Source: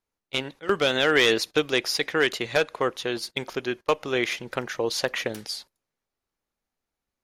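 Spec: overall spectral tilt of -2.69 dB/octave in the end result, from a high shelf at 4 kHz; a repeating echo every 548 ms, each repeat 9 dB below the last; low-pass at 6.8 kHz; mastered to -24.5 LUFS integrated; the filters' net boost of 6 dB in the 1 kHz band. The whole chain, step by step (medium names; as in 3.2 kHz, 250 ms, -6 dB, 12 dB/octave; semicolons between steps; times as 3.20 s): low-pass 6.8 kHz; peaking EQ 1 kHz +7.5 dB; treble shelf 4 kHz +5.5 dB; feedback delay 548 ms, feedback 35%, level -9 dB; trim -2 dB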